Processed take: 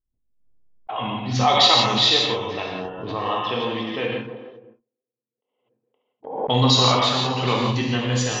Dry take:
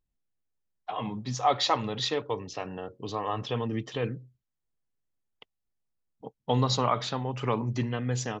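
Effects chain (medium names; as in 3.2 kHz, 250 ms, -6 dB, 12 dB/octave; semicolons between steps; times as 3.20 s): backward echo that repeats 260 ms, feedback 43%, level -10 dB; 3.16–6.38 s: high-pass 170 Hz -> 570 Hz 12 dB/octave; level-controlled noise filter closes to 450 Hz, open at -24 dBFS; gate -50 dBFS, range -30 dB; peaking EQ 3.3 kHz +10.5 dB 1.5 oct; gated-style reverb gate 200 ms flat, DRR -2 dB; swell ahead of each attack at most 61 dB/s; trim +1.5 dB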